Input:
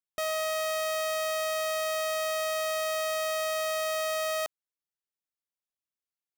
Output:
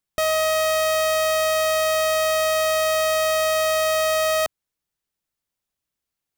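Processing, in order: bass shelf 200 Hz +10 dB; trim +9 dB

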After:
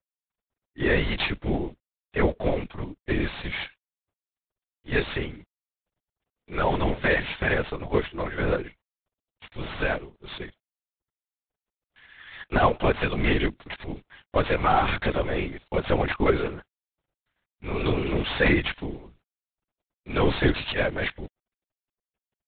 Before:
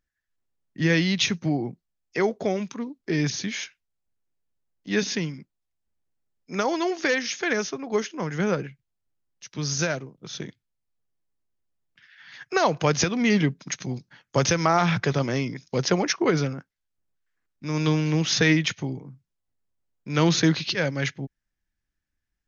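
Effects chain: CVSD coder 32 kbps; high-pass 280 Hz 12 dB/octave; LPC vocoder at 8 kHz whisper; trim +2.5 dB

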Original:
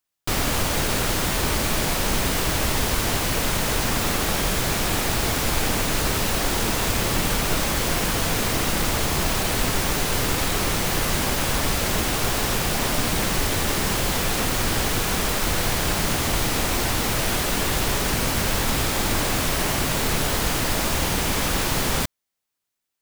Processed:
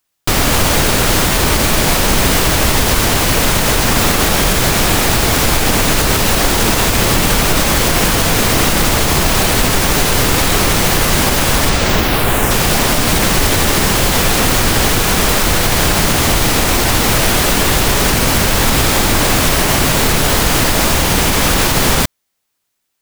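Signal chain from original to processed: 11.68–12.50 s: peaking EQ 16 kHz -> 4 kHz -13 dB 0.74 oct; loudness maximiser +12 dB; trim -1 dB

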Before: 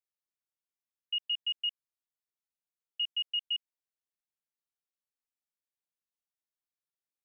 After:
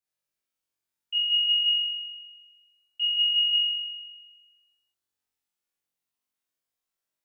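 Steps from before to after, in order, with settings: flutter echo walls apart 3.7 m, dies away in 1.4 s

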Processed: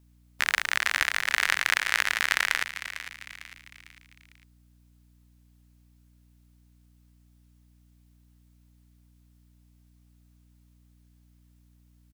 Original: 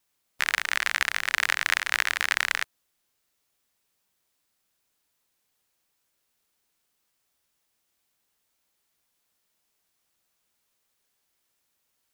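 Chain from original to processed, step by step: frequency-shifting echo 451 ms, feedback 44%, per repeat +97 Hz, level -12 dB; hum 60 Hz, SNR 25 dB

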